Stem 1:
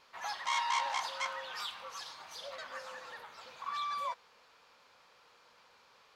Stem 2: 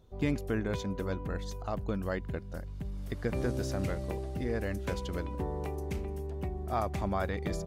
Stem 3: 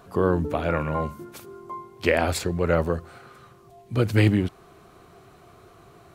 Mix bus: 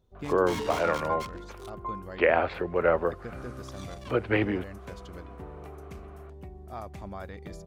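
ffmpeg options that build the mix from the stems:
ffmpeg -i stem1.wav -i stem2.wav -i stem3.wav -filter_complex "[0:a]acrusher=bits=4:mix=0:aa=0.5,volume=-5.5dB[link_01];[1:a]volume=-8dB[link_02];[2:a]lowpass=frequency=3600:width=0.5412,lowpass=frequency=3600:width=1.3066,acrossover=split=350 2500:gain=0.178 1 0.2[link_03][link_04][link_05];[link_03][link_04][link_05]amix=inputs=3:normalize=0,adelay=150,volume=1dB[link_06];[link_01][link_02][link_06]amix=inputs=3:normalize=0" out.wav

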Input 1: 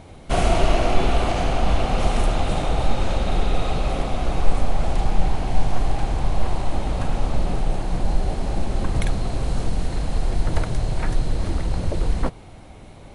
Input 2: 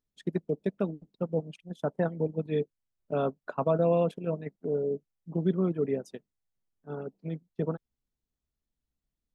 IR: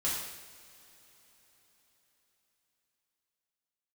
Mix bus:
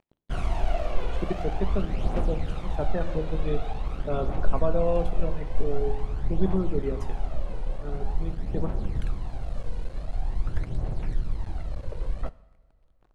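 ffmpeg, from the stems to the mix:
-filter_complex "[0:a]highshelf=frequency=4100:gain=-11,aphaser=in_gain=1:out_gain=1:delay=2.1:decay=0.59:speed=0.46:type=triangular,aeval=exprs='sgn(val(0))*max(abs(val(0))-0.0398,0)':channel_layout=same,volume=-13dB,asplit=2[link_01][link_02];[link_02]volume=-21dB[link_03];[1:a]adelay=950,volume=-3dB,asplit=2[link_04][link_05];[link_05]volume=-11.5dB[link_06];[2:a]atrim=start_sample=2205[link_07];[link_03][link_06]amix=inputs=2:normalize=0[link_08];[link_08][link_07]afir=irnorm=-1:irlink=0[link_09];[link_01][link_04][link_09]amix=inputs=3:normalize=0"

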